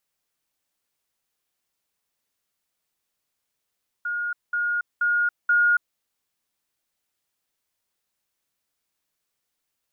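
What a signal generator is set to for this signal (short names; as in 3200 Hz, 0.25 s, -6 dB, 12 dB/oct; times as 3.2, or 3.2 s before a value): level ladder 1430 Hz -24.5 dBFS, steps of 3 dB, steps 4, 0.28 s 0.20 s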